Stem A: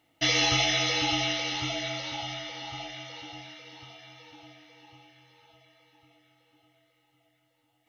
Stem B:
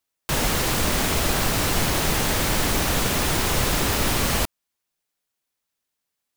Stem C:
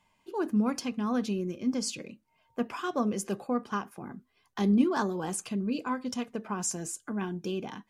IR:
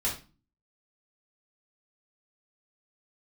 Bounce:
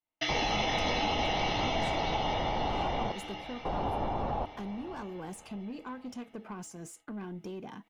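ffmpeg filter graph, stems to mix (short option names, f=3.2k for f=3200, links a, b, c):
-filter_complex "[0:a]bass=f=250:g=-12,treble=f=4k:g=-9,acompressor=threshold=-31dB:ratio=6,volume=1dB[a];[1:a]lowpass=f=810:t=q:w=4.9,volume=-7dB,asplit=3[b][c][d];[b]atrim=end=3.12,asetpts=PTS-STARTPTS,afade=t=out:st=3.116:d=0.004:c=hsin[e];[c]atrim=start=3.12:end=3.65,asetpts=PTS-STARTPTS,volume=0[f];[d]atrim=start=3.65,asetpts=PTS-STARTPTS,afade=t=in:d=0.004:c=hsin[g];[e][f][g]concat=n=3:v=0:a=1,asplit=2[h][i];[i]volume=-21.5dB[j];[2:a]highshelf=f=7.7k:g=8.5,acompressor=threshold=-33dB:ratio=6,asoftclip=type=tanh:threshold=-32.5dB,volume=-1.5dB[k];[h][k]amix=inputs=2:normalize=0,highshelf=f=3.3k:g=-10,alimiter=limit=-24dB:level=0:latency=1:release=72,volume=0dB[l];[j]aecho=0:1:581|1162|1743|2324|2905:1|0.37|0.137|0.0507|0.0187[m];[a][l][m]amix=inputs=3:normalize=0,agate=range=-33dB:threshold=-52dB:ratio=3:detection=peak"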